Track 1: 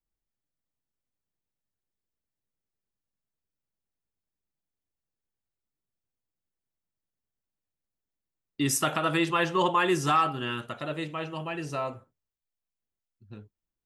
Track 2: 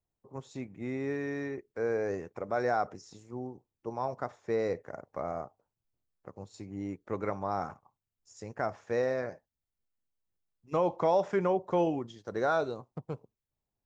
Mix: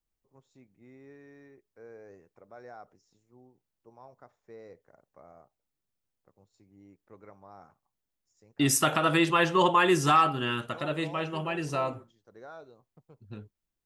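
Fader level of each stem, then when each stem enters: +2.0 dB, -18.0 dB; 0.00 s, 0.00 s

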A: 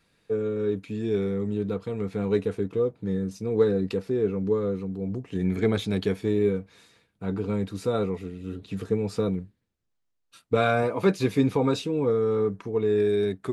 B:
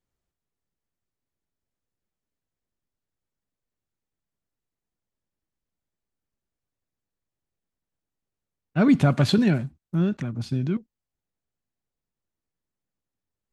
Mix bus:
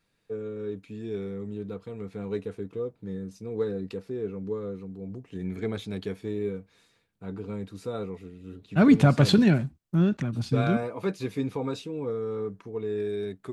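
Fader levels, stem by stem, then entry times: -7.5 dB, +0.5 dB; 0.00 s, 0.00 s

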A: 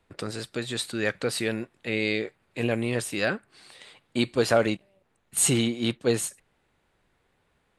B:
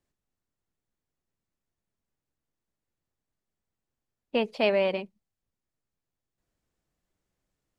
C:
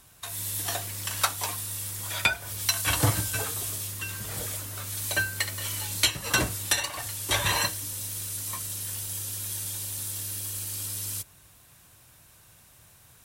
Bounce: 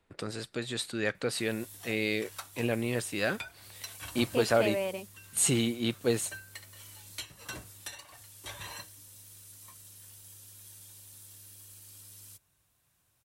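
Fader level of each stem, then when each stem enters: -4.0 dB, -7.5 dB, -17.5 dB; 0.00 s, 0.00 s, 1.15 s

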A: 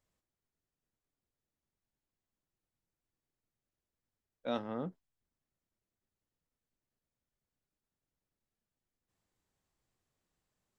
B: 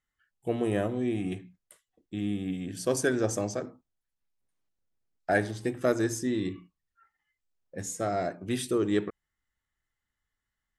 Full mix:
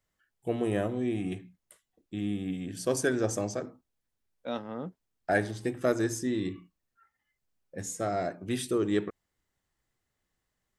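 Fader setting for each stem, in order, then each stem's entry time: +1.0 dB, -1.0 dB; 0.00 s, 0.00 s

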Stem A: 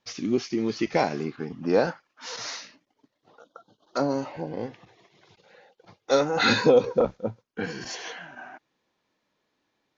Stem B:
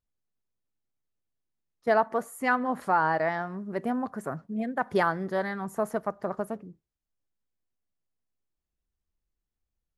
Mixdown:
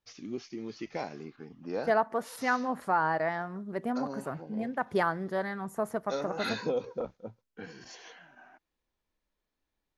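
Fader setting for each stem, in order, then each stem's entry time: -13.0 dB, -3.0 dB; 0.00 s, 0.00 s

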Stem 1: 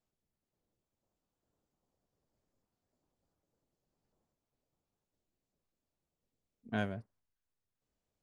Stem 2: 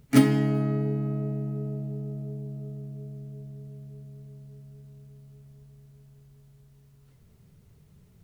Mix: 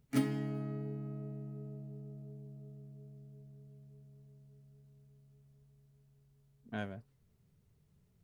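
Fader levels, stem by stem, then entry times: -5.0 dB, -13.5 dB; 0.00 s, 0.00 s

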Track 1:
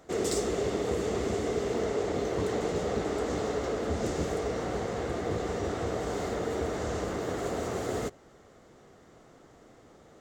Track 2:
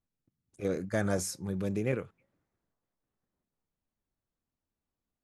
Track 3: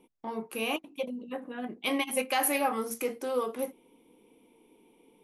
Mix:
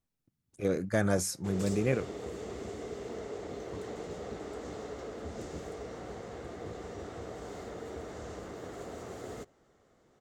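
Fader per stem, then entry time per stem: -10.5 dB, +2.0 dB, mute; 1.35 s, 0.00 s, mute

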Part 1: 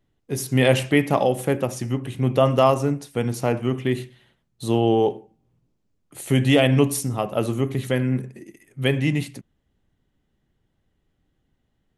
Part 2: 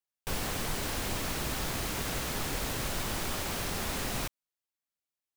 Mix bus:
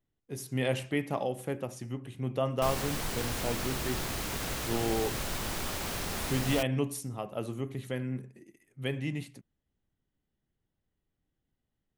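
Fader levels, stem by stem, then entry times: -12.5 dB, -1.0 dB; 0.00 s, 2.35 s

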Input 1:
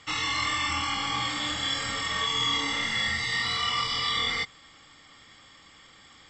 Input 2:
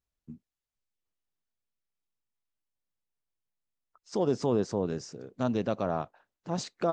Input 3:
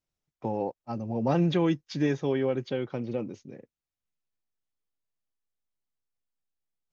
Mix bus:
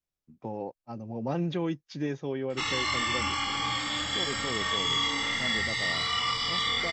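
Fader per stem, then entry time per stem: -1.0 dB, -10.0 dB, -5.5 dB; 2.50 s, 0.00 s, 0.00 s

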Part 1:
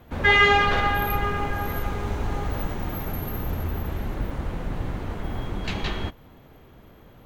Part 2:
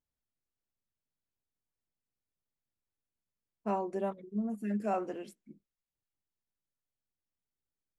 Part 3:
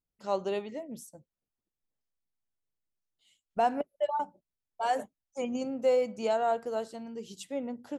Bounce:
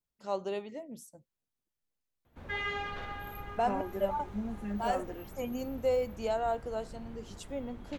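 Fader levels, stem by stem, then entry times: -18.5 dB, -3.0 dB, -3.5 dB; 2.25 s, 0.00 s, 0.00 s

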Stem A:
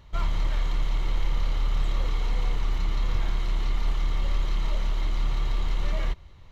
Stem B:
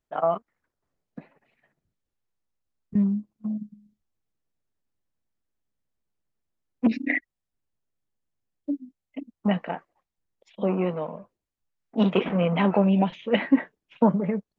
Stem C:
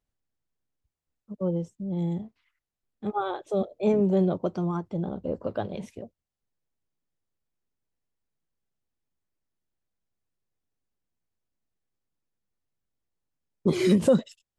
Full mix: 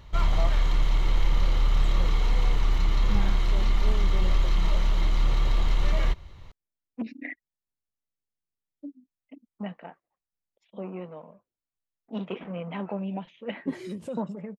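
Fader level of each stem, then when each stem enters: +3.0 dB, -12.0 dB, -16.0 dB; 0.00 s, 0.15 s, 0.00 s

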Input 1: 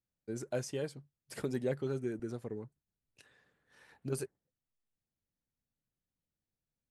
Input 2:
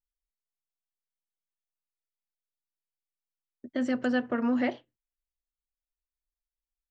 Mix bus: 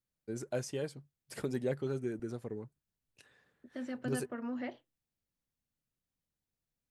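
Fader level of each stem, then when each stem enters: 0.0 dB, -12.0 dB; 0.00 s, 0.00 s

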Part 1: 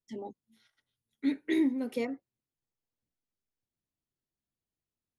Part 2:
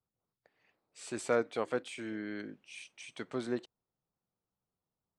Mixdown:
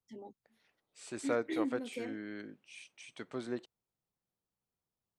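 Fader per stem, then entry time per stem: -8.5 dB, -3.5 dB; 0.00 s, 0.00 s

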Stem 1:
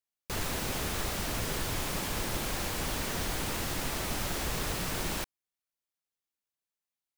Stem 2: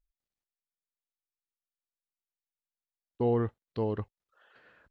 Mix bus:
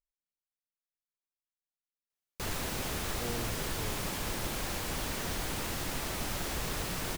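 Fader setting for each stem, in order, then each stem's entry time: -2.0 dB, -14.0 dB; 2.10 s, 0.00 s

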